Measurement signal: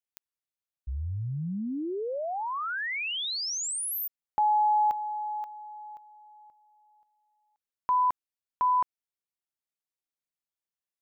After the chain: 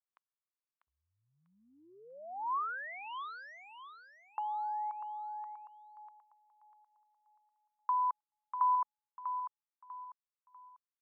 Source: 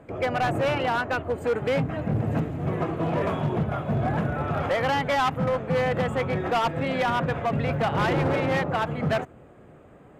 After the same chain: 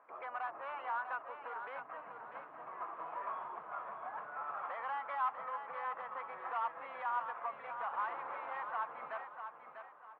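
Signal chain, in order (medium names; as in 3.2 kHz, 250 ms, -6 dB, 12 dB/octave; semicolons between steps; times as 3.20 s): compression, threshold -28 dBFS; ladder band-pass 1.2 kHz, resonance 60%; distance through air 310 m; feedback delay 645 ms, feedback 33%, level -8 dB; trim +4 dB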